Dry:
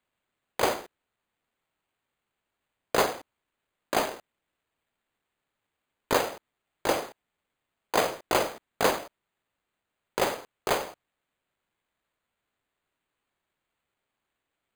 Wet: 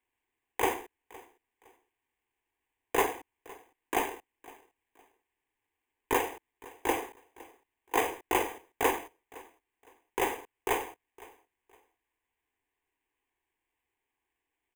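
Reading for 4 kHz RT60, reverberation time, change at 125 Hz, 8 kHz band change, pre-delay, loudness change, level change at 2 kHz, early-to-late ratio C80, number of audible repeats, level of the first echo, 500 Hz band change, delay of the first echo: no reverb audible, no reverb audible, −7.0 dB, −4.0 dB, no reverb audible, −3.5 dB, −2.0 dB, no reverb audible, 2, −21.5 dB, −4.5 dB, 512 ms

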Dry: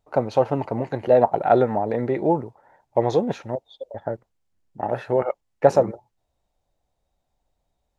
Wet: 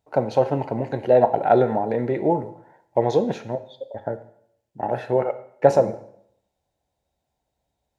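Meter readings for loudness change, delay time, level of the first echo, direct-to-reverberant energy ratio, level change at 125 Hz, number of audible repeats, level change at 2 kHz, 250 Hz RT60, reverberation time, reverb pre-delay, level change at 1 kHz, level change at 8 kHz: +0.5 dB, no echo audible, no echo audible, 10.5 dB, +0.5 dB, no echo audible, 0.0 dB, 0.70 s, 0.65 s, 6 ms, 0.0 dB, can't be measured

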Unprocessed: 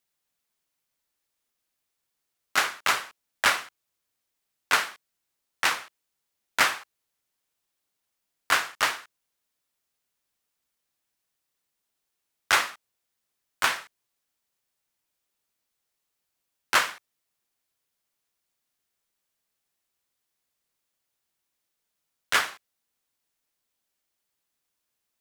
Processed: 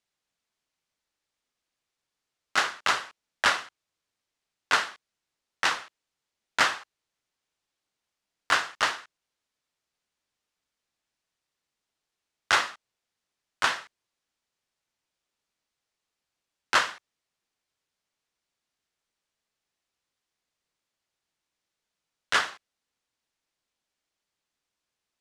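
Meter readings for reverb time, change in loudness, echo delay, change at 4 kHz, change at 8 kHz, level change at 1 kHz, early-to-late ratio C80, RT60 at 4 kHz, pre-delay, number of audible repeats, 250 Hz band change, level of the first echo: no reverb audible, −1.0 dB, no echo audible, −0.5 dB, −4.0 dB, 0.0 dB, no reverb audible, no reverb audible, no reverb audible, no echo audible, 0.0 dB, no echo audible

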